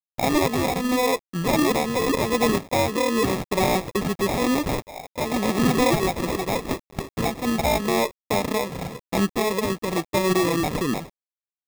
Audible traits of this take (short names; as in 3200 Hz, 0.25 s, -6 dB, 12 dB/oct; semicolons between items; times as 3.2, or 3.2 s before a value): a quantiser's noise floor 8-bit, dither none; tremolo triangle 0.9 Hz, depth 40%; aliases and images of a low sample rate 1500 Hz, jitter 0%